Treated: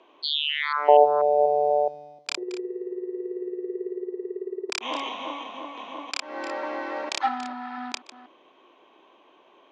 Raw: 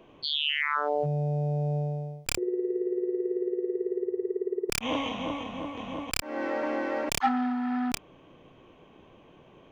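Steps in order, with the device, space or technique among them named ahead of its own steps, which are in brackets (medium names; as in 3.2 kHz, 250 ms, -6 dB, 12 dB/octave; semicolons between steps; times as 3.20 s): chunks repeated in reverse 243 ms, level -14 dB; 0.88–1.88 s: high-order bell 620 Hz +15.5 dB; phone speaker on a table (cabinet simulation 330–6900 Hz, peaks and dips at 480 Hz -6 dB, 1 kHz +5 dB, 3.9 kHz +6 dB)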